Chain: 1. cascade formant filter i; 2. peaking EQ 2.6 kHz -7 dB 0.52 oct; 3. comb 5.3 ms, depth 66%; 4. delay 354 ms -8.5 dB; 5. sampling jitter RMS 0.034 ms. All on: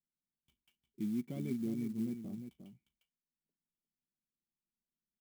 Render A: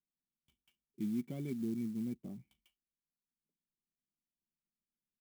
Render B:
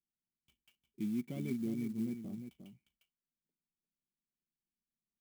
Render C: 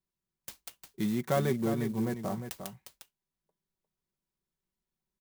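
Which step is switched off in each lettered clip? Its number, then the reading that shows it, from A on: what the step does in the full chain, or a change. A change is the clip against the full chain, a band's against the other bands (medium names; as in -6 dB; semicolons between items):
4, momentary loudness spread change -5 LU; 2, 2 kHz band +4.0 dB; 1, 250 Hz band -11.5 dB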